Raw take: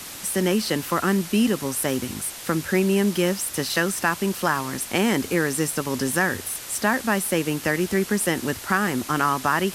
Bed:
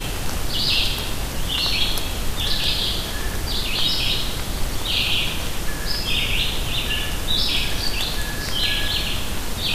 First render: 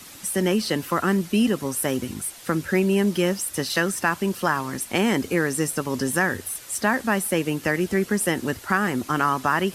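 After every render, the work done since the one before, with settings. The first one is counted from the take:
broadband denoise 8 dB, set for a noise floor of −37 dBFS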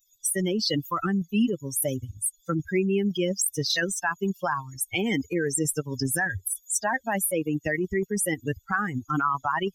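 spectral dynamics exaggerated over time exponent 3
in parallel at +1 dB: compressor whose output falls as the input rises −33 dBFS, ratio −0.5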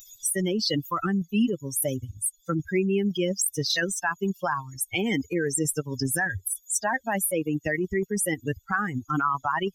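upward compression, threshold −35 dBFS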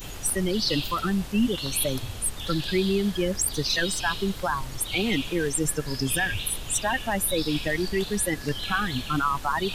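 mix in bed −12 dB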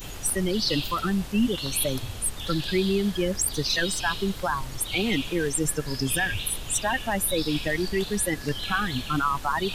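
no processing that can be heard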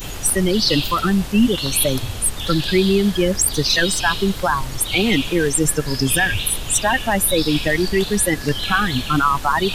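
level +8 dB

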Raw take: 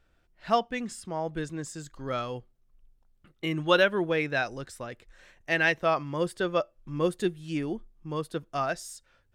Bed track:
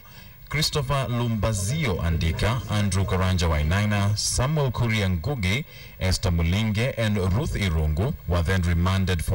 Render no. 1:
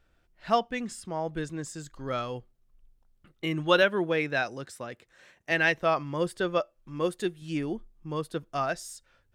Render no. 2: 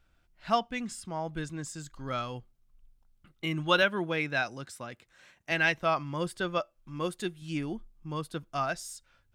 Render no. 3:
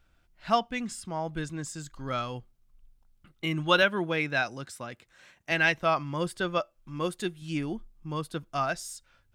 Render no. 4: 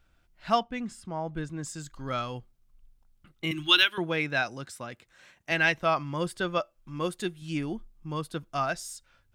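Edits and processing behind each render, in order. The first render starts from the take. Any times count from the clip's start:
0:03.82–0:05.51: high-pass filter 110 Hz; 0:06.58–0:07.42: low-shelf EQ 230 Hz −7.5 dB
parametric band 450 Hz −7 dB 1 octave; notch filter 1,800 Hz, Q 15
level +2 dB
0:00.63–0:01.63: high-shelf EQ 2,200 Hz −9 dB; 0:03.51–0:03.98: drawn EQ curve 140 Hz 0 dB, 190 Hz −27 dB, 330 Hz +2 dB, 480 Hz −23 dB, 810 Hz −9 dB, 2,000 Hz +1 dB, 3,300 Hz +10 dB, 4,800 Hz +4 dB, 7,300 Hz +2 dB, 12,000 Hz +10 dB

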